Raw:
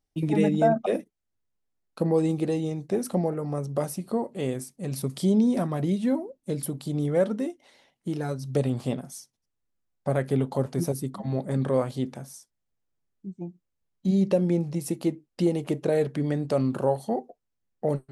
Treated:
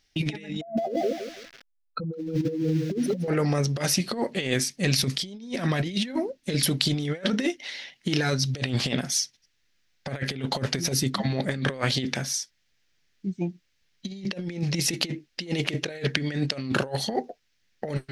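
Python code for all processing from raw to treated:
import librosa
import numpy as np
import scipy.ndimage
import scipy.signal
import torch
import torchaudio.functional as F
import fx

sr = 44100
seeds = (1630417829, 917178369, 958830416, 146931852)

y = fx.chain(x, sr, fx.spec_expand(power=3.1),
    fx.echo_crushed(ms=164, feedback_pct=35, bits=9, wet_db=-8.0), at=(0.61, 3.28))
y = fx.band_shelf(y, sr, hz=3100.0, db=15.5, octaves=2.3)
y = fx.over_compress(y, sr, threshold_db=-29.0, ratio=-0.5)
y = y * 10.0 ** (3.0 / 20.0)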